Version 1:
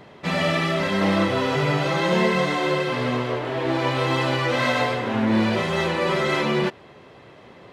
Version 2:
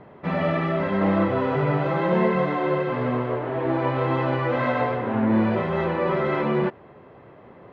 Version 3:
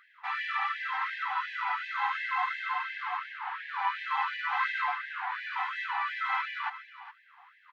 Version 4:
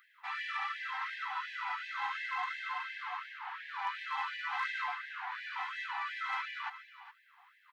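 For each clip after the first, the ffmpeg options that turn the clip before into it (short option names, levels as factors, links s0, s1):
-af "lowpass=1500"
-af "aecho=1:1:414:0.2,afftfilt=real='re*gte(b*sr/1024,710*pow(1600/710,0.5+0.5*sin(2*PI*2.8*pts/sr)))':imag='im*gte(b*sr/1024,710*pow(1600/710,0.5+0.5*sin(2*PI*2.8*pts/sr)))':win_size=1024:overlap=0.75"
-af "aeval=exprs='0.15*(cos(1*acos(clip(val(0)/0.15,-1,1)))-cos(1*PI/2))+0.00299*(cos(5*acos(clip(val(0)/0.15,-1,1)))-cos(5*PI/2))':c=same,crystalizer=i=2.5:c=0,volume=0.398"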